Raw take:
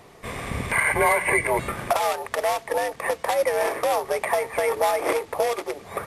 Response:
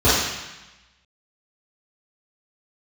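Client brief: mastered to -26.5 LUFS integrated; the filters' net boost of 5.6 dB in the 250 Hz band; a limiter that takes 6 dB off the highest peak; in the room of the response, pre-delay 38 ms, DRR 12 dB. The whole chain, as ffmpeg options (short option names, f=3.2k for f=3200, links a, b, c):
-filter_complex "[0:a]equalizer=f=250:t=o:g=8.5,alimiter=limit=-14dB:level=0:latency=1,asplit=2[a][b];[1:a]atrim=start_sample=2205,adelay=38[c];[b][c]afir=irnorm=-1:irlink=0,volume=-35.5dB[d];[a][d]amix=inputs=2:normalize=0,volume=-2dB"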